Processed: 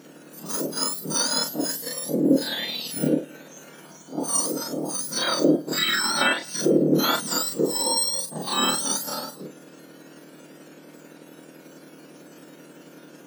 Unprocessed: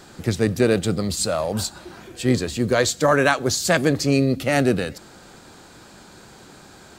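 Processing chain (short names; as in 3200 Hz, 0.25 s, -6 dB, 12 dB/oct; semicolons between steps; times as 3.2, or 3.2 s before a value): spectrum mirrored in octaves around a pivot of 1500 Hz; granular stretch 1.9×, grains 0.11 s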